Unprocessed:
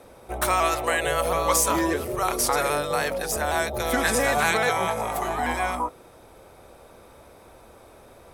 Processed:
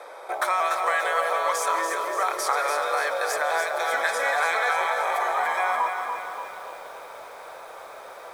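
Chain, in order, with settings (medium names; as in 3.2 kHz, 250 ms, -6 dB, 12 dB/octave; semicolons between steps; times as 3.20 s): Butterworth band-stop 2.8 kHz, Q 6.1; treble shelf 9.6 kHz -12 dB; compression 4:1, threshold -34 dBFS, peak gain reduction 14 dB; high-pass 480 Hz 24 dB/octave; peaking EQ 1.4 kHz +7 dB 2.2 oct; algorithmic reverb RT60 3.1 s, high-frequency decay 0.85×, pre-delay 100 ms, DRR 11.5 dB; bit-crushed delay 290 ms, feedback 55%, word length 9-bit, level -6 dB; trim +5.5 dB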